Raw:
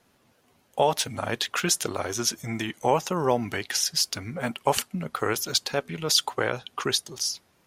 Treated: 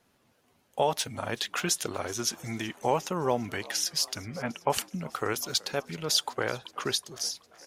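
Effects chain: 4.15–4.7 steep low-pass 3000 Hz; on a send: frequency-shifting echo 0.377 s, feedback 64%, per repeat +76 Hz, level -22 dB; on the sum: gain -4 dB

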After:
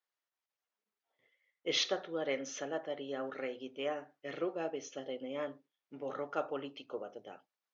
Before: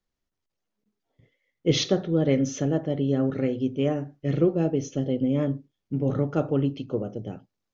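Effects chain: HPF 880 Hz 12 dB/oct; high shelf 4600 Hz -12 dB

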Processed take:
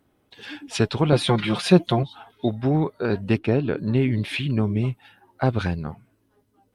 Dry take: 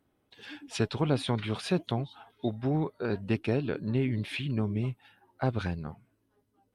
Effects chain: 1.12–2.03 comb 5.7 ms, depth 98%; 3.38–3.78 high shelf 3900 Hz -10.5 dB; gain +7.5 dB

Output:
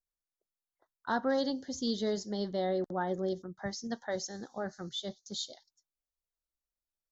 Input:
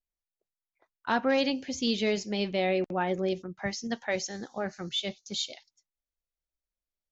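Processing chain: Butterworth band-stop 2500 Hz, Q 1.4; gain -4 dB

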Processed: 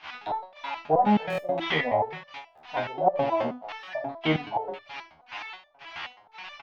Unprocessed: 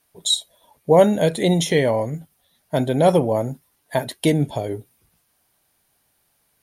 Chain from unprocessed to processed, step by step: delta modulation 32 kbps, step -29 dBFS; on a send: thinning echo 0.29 s, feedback 28%, high-pass 610 Hz, level -16 dB; on the sum: limiter -13.5 dBFS, peak gain reduction 10 dB; LFO low-pass square 1.9 Hz 670–2600 Hz; resonant low shelf 630 Hz -10 dB, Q 3; gate -32 dBFS, range -18 dB; bell 390 Hz +10.5 dB 1.5 oct; early reflections 25 ms -9.5 dB, 72 ms -12.5 dB; stuck buffer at 1.28/2.46/3.76, samples 1024, times 4; stepped resonator 9.4 Hz 78–590 Hz; gain +7.5 dB

